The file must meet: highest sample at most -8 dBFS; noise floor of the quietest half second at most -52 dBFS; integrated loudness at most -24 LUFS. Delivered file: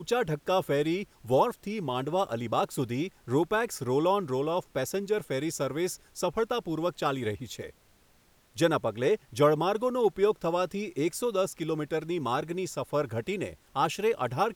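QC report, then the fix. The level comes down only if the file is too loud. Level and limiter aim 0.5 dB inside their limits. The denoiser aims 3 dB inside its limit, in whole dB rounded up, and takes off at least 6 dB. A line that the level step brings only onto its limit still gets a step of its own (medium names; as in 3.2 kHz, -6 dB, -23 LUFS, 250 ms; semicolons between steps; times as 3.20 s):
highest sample -11.5 dBFS: pass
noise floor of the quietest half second -63 dBFS: pass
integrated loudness -29.5 LUFS: pass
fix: none needed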